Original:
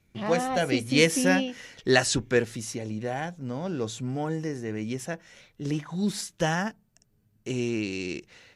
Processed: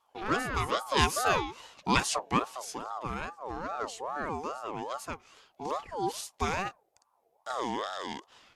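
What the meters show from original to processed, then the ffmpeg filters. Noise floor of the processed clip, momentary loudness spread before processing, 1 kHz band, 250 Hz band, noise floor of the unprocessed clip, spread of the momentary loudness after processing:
−73 dBFS, 13 LU, +3.5 dB, −10.0 dB, −68 dBFS, 12 LU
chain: -af "aeval=exprs='val(0)*sin(2*PI*790*n/s+790*0.3/2.4*sin(2*PI*2.4*n/s))':channel_layout=same,volume=-2dB"

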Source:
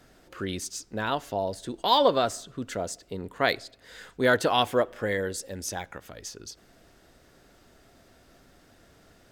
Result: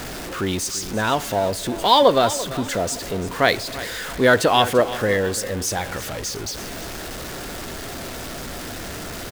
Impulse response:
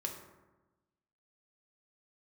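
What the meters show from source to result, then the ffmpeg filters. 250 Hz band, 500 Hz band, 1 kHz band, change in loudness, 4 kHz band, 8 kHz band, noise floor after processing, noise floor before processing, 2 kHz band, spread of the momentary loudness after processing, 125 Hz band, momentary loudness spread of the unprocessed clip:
+8.0 dB, +7.5 dB, +7.5 dB, +5.5 dB, +7.5 dB, +11.0 dB, −32 dBFS, −59 dBFS, +7.5 dB, 15 LU, +9.5 dB, 19 LU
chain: -af "aeval=exprs='val(0)+0.5*0.0224*sgn(val(0))':channel_layout=same,aecho=1:1:340|680|1020:0.178|0.064|0.023,volume=6dB"

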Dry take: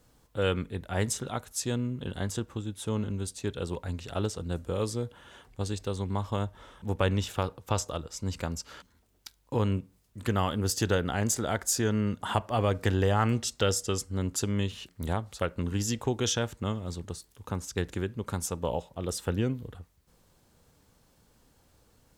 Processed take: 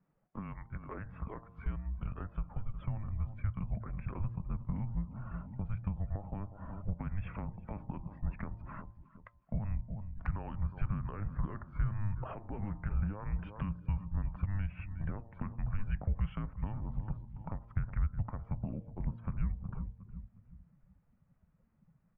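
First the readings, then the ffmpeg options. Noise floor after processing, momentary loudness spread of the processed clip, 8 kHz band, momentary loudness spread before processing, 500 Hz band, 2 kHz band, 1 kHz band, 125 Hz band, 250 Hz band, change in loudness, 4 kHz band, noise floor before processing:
−71 dBFS, 9 LU, below −40 dB, 11 LU, −21.0 dB, −14.5 dB, −13.5 dB, −5.0 dB, −10.0 dB, −8.5 dB, below −30 dB, −65 dBFS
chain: -filter_complex "[0:a]alimiter=limit=-21.5dB:level=0:latency=1:release=50,lowshelf=frequency=230:gain=5.5,highpass=frequency=400:width_type=q:width=0.5412,highpass=frequency=400:width_type=q:width=1.307,lowpass=frequency=2400:width_type=q:width=0.5176,lowpass=frequency=2400:width_type=q:width=0.7071,lowpass=frequency=2400:width_type=q:width=1.932,afreqshift=-310,asplit=2[link_01][link_02];[link_02]aecho=0:1:362|724|1086|1448:0.158|0.0666|0.028|0.0117[link_03];[link_01][link_03]amix=inputs=2:normalize=0,afftdn=noise_reduction=15:noise_floor=-57,bandreject=frequency=114.9:width_type=h:width=4,bandreject=frequency=229.8:width_type=h:width=4,bandreject=frequency=344.7:width_type=h:width=4,bandreject=frequency=459.6:width_type=h:width=4,bandreject=frequency=574.5:width_type=h:width=4,bandreject=frequency=689.4:width_type=h:width=4,bandreject=frequency=804.3:width_type=h:width=4,bandreject=frequency=919.2:width_type=h:width=4,bandreject=frequency=1034.1:width_type=h:width=4,acompressor=threshold=-46dB:ratio=4,asubboost=boost=7:cutoff=130,volume=3.5dB"

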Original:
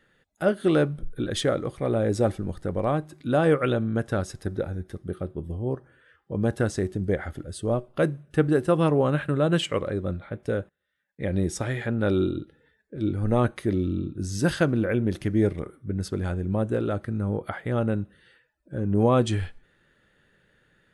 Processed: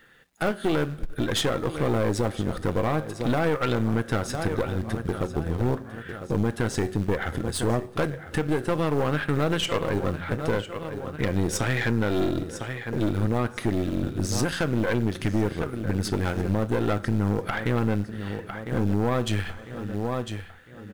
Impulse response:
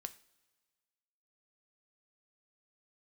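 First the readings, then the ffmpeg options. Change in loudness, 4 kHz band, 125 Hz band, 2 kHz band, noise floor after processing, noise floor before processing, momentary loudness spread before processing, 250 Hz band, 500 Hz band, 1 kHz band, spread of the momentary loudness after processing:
−0.5 dB, +4.0 dB, +0.5 dB, +3.5 dB, −42 dBFS, −69 dBFS, 11 LU, −0.5 dB, −1.5 dB, +1.5 dB, 7 LU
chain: -filter_complex "[0:a]lowshelf=frequency=400:gain=-4,asplit=2[link_01][link_02];[link_02]acrusher=bits=4:mode=log:mix=0:aa=0.000001,volume=-4.5dB[link_03];[link_01][link_03]amix=inputs=2:normalize=0,bass=frequency=250:gain=2,treble=frequency=4000:gain=-4,bandreject=frequency=580:width=12,dynaudnorm=framelen=290:gausssize=11:maxgain=8.5dB,aecho=1:1:1002|2004|3006:0.141|0.0551|0.0215,asplit=2[link_04][link_05];[1:a]atrim=start_sample=2205,lowshelf=frequency=500:gain=-7[link_06];[link_05][link_06]afir=irnorm=-1:irlink=0,volume=11dB[link_07];[link_04][link_07]amix=inputs=2:normalize=0,alimiter=limit=-2dB:level=0:latency=1:release=297,acompressor=threshold=-23dB:ratio=2,acrusher=bits=10:mix=0:aa=0.000001,bandreject=frequency=88.43:width_type=h:width=4,bandreject=frequency=176.86:width_type=h:width=4,bandreject=frequency=265.29:width_type=h:width=4,aeval=exprs='(tanh(7.94*val(0)+0.7)-tanh(0.7))/7.94':channel_layout=same"

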